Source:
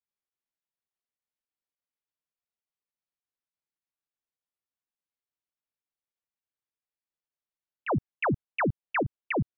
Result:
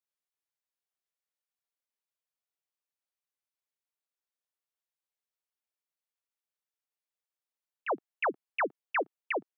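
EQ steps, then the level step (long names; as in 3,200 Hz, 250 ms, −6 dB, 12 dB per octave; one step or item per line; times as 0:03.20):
high-pass filter 390 Hz 24 dB per octave
−1.5 dB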